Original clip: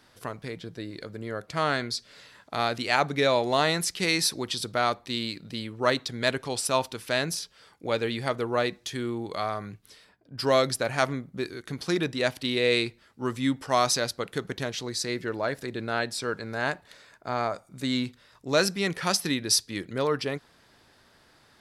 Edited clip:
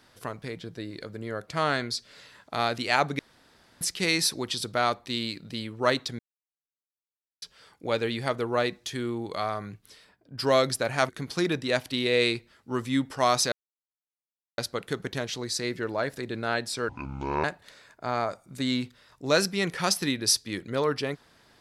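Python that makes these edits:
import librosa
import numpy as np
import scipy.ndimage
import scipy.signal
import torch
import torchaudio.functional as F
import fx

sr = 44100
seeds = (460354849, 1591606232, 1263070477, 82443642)

y = fx.edit(x, sr, fx.room_tone_fill(start_s=3.19, length_s=0.62),
    fx.silence(start_s=6.19, length_s=1.23),
    fx.cut(start_s=11.09, length_s=0.51),
    fx.insert_silence(at_s=14.03, length_s=1.06),
    fx.speed_span(start_s=16.34, length_s=0.33, speed=0.6), tone=tone)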